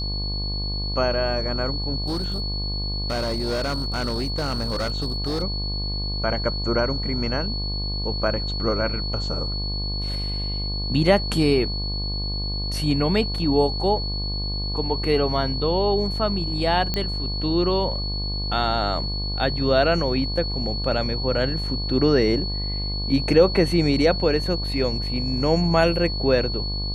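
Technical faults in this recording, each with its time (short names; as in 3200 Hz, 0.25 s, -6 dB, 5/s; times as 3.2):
buzz 50 Hz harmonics 23 -28 dBFS
tone 4400 Hz -29 dBFS
2.04–5.43 clipped -21 dBFS
16.94 pop -10 dBFS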